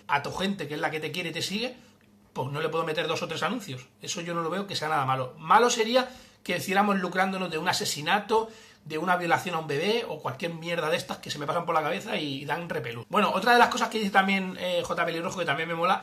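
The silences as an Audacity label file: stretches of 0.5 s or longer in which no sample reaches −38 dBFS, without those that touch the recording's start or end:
1.720000	2.360000	silence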